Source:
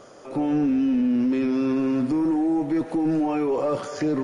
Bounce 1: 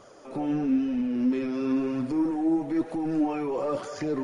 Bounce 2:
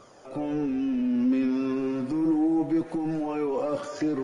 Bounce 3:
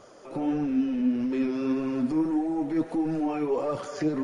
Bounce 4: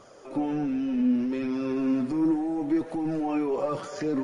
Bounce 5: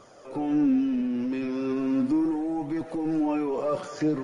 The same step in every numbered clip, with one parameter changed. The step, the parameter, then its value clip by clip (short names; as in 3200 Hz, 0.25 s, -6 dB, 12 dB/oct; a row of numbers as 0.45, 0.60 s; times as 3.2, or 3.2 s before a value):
flange, rate: 1, 0.2, 1.6, 0.66, 0.37 Hz